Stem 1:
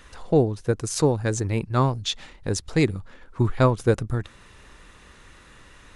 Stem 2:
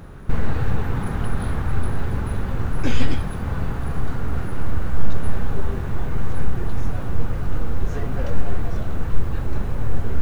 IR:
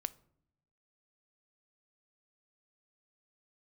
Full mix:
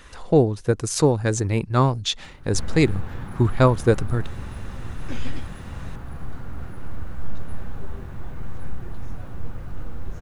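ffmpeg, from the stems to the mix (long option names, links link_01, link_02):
-filter_complex "[0:a]volume=2.5dB[link_01];[1:a]bandreject=frequency=430:width=12,adelay=2250,volume=-9.5dB[link_02];[link_01][link_02]amix=inputs=2:normalize=0"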